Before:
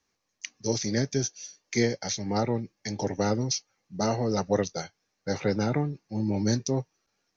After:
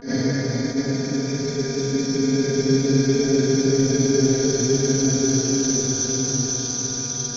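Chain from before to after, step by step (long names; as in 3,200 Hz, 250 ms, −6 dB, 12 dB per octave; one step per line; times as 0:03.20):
extreme stretch with random phases 30×, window 0.25 s, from 0:01.05
granular cloud 100 ms, grains 20 per second, spray 32 ms, pitch spread up and down by 0 semitones
hum with harmonics 120 Hz, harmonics 13, −50 dBFS −3 dB per octave
on a send at −3 dB: convolution reverb, pre-delay 4 ms
on the sum: level that may rise only so fast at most 180 dB per second
level +7.5 dB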